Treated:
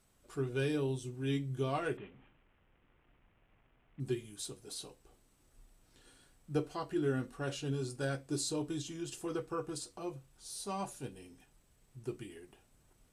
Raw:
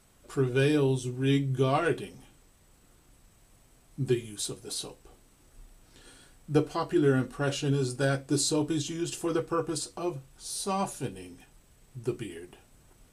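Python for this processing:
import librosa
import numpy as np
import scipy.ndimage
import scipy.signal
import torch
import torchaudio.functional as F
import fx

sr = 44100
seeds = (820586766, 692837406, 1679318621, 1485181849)

y = fx.cvsd(x, sr, bps=16000, at=(1.97, 4.0))
y = y * librosa.db_to_amplitude(-9.0)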